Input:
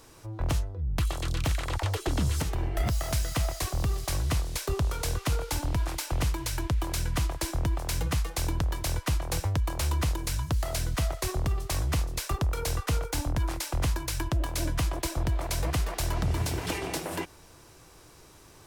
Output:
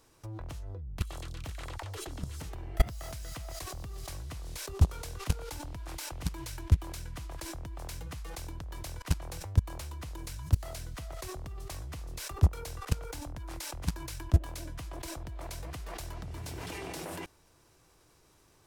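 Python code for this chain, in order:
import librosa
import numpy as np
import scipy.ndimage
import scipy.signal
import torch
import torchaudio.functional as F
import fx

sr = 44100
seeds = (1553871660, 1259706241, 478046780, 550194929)

y = fx.level_steps(x, sr, step_db=24)
y = y * librosa.db_to_amplitude(8.0)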